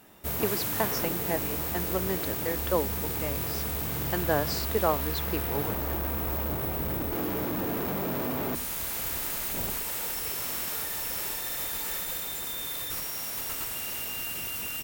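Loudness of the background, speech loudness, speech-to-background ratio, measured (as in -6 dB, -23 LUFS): -30.0 LUFS, -33.0 LUFS, -3.0 dB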